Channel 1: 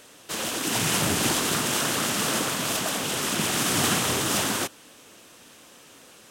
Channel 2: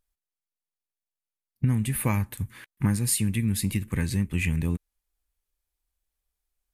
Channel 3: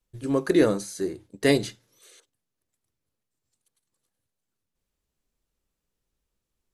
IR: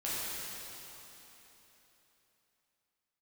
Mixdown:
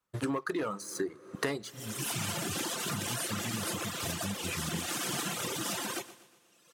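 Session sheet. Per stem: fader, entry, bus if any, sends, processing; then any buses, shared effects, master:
-6.5 dB, 1.35 s, no send, echo send -8 dB, comb 5.8 ms, depth 42%
-7.0 dB, 0.10 s, no send, no echo send, limiter -18 dBFS, peak gain reduction 5.5 dB
0.0 dB, 0.00 s, send -22.5 dB, no echo send, bell 1200 Hz +14.5 dB 1.1 oct; sample leveller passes 2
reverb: on, RT60 3.6 s, pre-delay 5 ms
echo: feedback echo 0.12 s, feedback 46%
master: HPF 97 Hz; reverb removal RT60 1.4 s; compressor 16:1, threshold -30 dBFS, peak gain reduction 22 dB

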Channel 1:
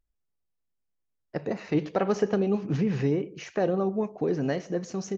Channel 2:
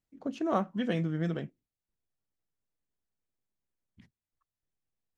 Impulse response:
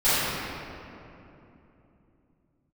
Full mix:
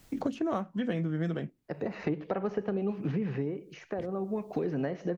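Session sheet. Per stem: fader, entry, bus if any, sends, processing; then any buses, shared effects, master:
-5.5 dB, 0.35 s, no send, treble ducked by the level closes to 1900 Hz, closed at -23.5 dBFS; auto duck -16 dB, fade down 0.70 s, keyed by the second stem
-0.5 dB, 0.00 s, no send, dry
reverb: off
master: three-band squash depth 100%

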